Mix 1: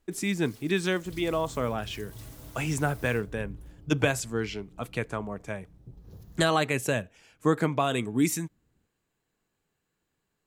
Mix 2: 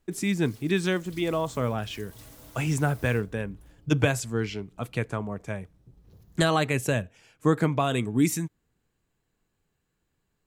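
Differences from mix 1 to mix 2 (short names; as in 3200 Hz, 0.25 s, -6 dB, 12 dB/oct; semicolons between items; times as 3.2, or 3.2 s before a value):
speech: add low shelf 130 Hz +10 dB; second sound -6.5 dB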